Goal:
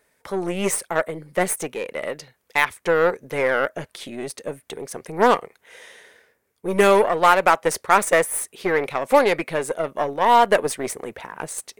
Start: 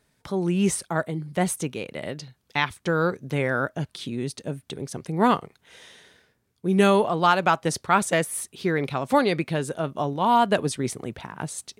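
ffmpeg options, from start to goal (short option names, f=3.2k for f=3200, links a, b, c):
-af "aeval=exprs='0.473*(cos(1*acos(clip(val(0)/0.473,-1,1)))-cos(1*PI/2))+0.0376*(cos(8*acos(clip(val(0)/0.473,-1,1)))-cos(8*PI/2))':c=same,equalizer=f=125:t=o:w=1:g=-5,equalizer=f=500:t=o:w=1:g=12,equalizer=f=1k:t=o:w=1:g=5,equalizer=f=2k:t=o:w=1:g=10,equalizer=f=4k:t=o:w=1:g=-3,crystalizer=i=2:c=0,volume=-5.5dB"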